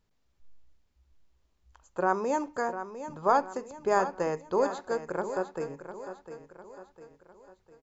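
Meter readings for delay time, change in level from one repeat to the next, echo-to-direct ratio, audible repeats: 0.703 s, -7.0 dB, -10.0 dB, 4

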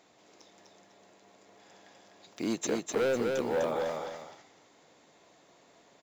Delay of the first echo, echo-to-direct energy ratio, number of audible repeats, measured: 0.251 s, -3.0 dB, 2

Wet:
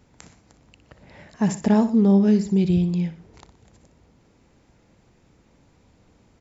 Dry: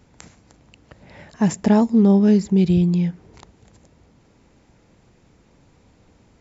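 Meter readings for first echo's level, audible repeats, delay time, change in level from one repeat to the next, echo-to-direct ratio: -12.0 dB, 2, 61 ms, -7.0 dB, -11.0 dB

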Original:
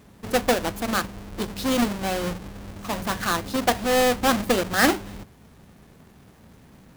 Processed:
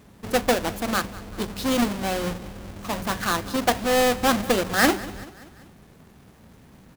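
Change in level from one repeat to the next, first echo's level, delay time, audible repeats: -5.5 dB, -19.0 dB, 0.193 s, 3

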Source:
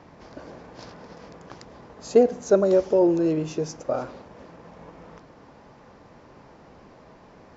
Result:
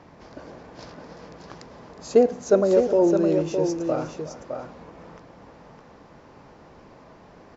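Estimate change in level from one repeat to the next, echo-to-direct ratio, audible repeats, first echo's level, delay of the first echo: no steady repeat, -6.0 dB, 2, -15.5 dB, 0.363 s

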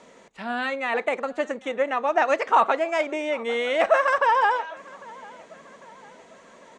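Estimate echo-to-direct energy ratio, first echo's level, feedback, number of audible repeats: -22.0 dB, -23.0 dB, 51%, 3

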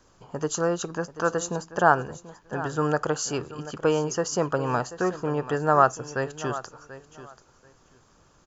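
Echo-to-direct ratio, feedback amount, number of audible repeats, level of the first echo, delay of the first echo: -15.0 dB, 18%, 2, -15.0 dB, 0.736 s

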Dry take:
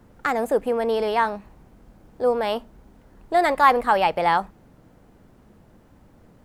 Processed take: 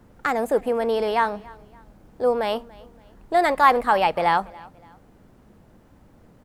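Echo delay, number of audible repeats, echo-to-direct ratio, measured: 0.285 s, 2, -22.5 dB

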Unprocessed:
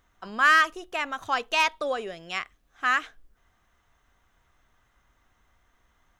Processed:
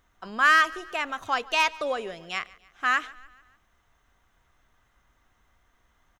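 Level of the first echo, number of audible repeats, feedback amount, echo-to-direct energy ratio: -22.0 dB, 3, 51%, -20.5 dB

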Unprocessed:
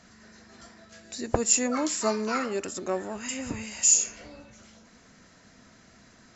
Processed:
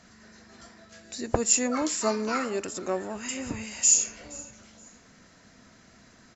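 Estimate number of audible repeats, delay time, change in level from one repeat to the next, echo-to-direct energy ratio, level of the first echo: 2, 0.472 s, -11.5 dB, -21.5 dB, -22.0 dB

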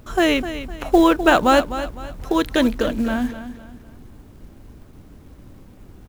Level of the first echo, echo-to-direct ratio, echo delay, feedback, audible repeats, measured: -12.0 dB, -11.5 dB, 0.254 s, 35%, 3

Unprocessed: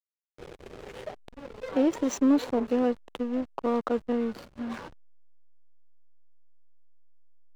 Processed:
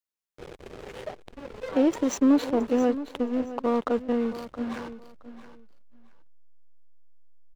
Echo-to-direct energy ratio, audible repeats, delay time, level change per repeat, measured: -14.0 dB, 2, 0.67 s, -14.0 dB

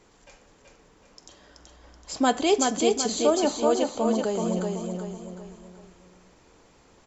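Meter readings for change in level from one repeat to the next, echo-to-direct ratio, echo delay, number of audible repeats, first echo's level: -7.5 dB, -3.0 dB, 0.379 s, 4, -4.0 dB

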